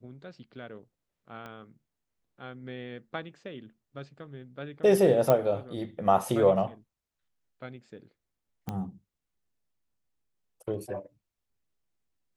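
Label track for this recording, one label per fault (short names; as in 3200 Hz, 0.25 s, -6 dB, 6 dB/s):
1.460000	1.460000	pop -28 dBFS
5.300000	5.300000	pop -11 dBFS
8.690000	8.690000	pop -20 dBFS
10.740000	10.740000	gap 3.2 ms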